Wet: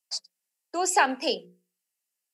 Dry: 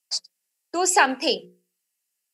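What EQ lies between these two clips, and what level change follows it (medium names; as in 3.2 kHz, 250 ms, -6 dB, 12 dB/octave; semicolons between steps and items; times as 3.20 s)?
rippled Chebyshev high-pass 170 Hz, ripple 3 dB; -2.5 dB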